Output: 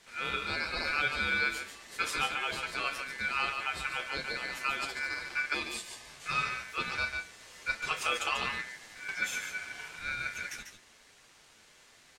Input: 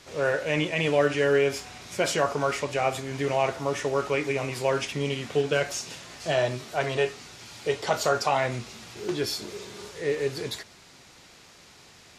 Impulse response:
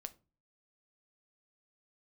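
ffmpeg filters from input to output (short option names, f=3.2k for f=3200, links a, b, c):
-filter_complex "[0:a]asettb=1/sr,asplit=3[a][b][c];[a]atrim=end=9.224[d];[b]atrim=start=9.22:end=9.96,asetpts=PTS-STARTPTS,afade=t=in:d=0.004:c=qsin,afade=t=out:st=0.736:d=0.004:c=qsin,equalizer=f=560:w=0.32:g=6.5[e];[c]atrim=start=9.956[f];[d][e]acrossfade=d=0.004:c1=hsin:c2=qsin[g];[g][f]acrossfade=d=0.004:c1=qsin:c2=hsin,aecho=1:1:143:0.473,flanger=delay=8.2:depth=2.8:regen=35:speed=0.24:shape=triangular,aeval=exprs='val(0)*sin(2*PI*1900*n/s)':c=same,asettb=1/sr,asplit=3[h][i][j];[h]atrim=end=5.544[k];[i]atrim=start=5.54:end=6.09,asetpts=PTS-STARTPTS,afade=t=in:d=0.004:c=qsin,afade=t=out:st=0.546:d=0.004:c=qsin,asuperstop=centerf=1400:order=20:qfactor=6.9[l];[j]atrim=start=6.086[m];[k][l]acrossfade=d=0.004:c1=hsin:c2=qsin[n];[n][m]acrossfade=d=0.004:c1=qsin:c2=hsin,volume=-1.5dB"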